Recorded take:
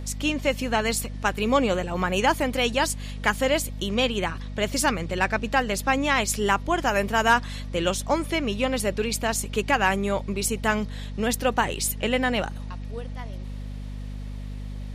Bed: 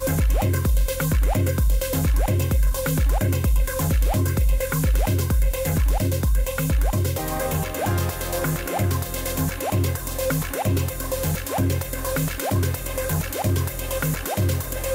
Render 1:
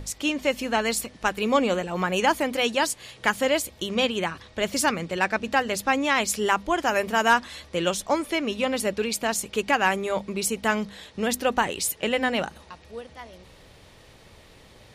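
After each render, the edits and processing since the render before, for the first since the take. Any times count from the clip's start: notches 50/100/150/200/250 Hz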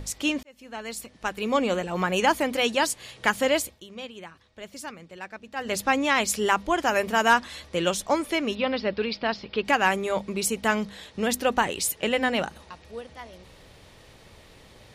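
0.43–1.92 fade in; 3.62–5.73 dip -15 dB, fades 0.18 s; 8.55–9.65 Chebyshev low-pass 5100 Hz, order 6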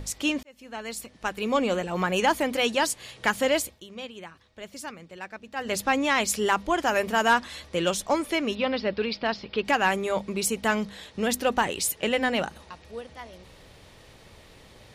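soft clip -10 dBFS, distortion -22 dB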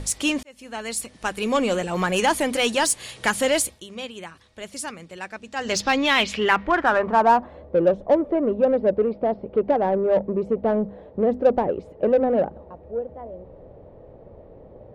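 low-pass sweep 10000 Hz -> 570 Hz, 5.33–7.61; in parallel at -3.5 dB: soft clip -24.5 dBFS, distortion -7 dB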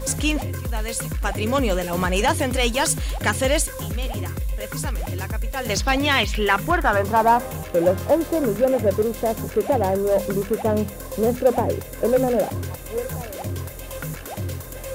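add bed -7 dB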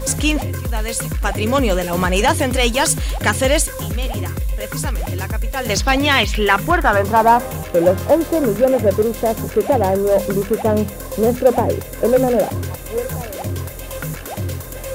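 gain +4.5 dB

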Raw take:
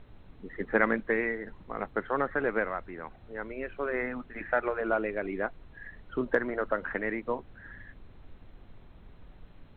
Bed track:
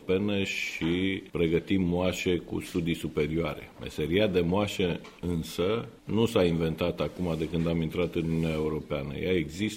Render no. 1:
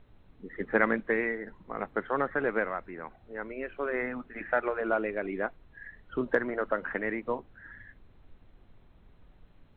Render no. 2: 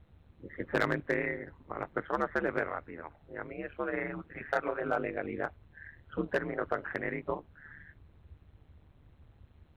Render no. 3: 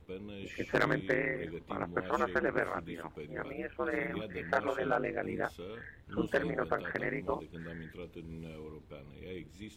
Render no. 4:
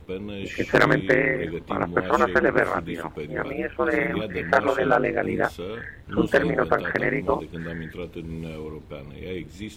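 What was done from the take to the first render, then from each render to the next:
noise print and reduce 6 dB
hard clip -17 dBFS, distortion -18 dB; ring modulator 75 Hz
add bed track -17.5 dB
gain +11.5 dB

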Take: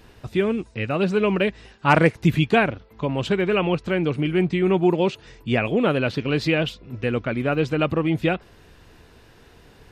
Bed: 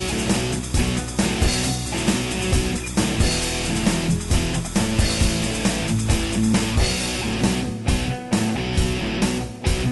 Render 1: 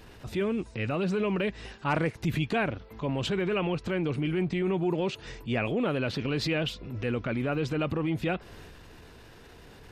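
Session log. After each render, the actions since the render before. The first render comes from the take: transient shaper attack -7 dB, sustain +4 dB; compressor 2.5:1, threshold -28 dBFS, peak gain reduction 10.5 dB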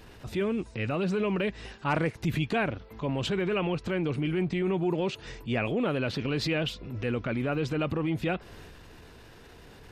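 nothing audible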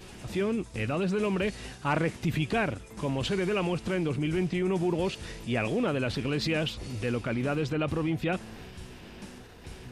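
add bed -24.5 dB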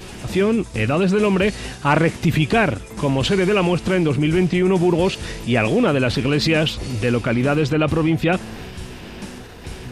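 gain +11 dB

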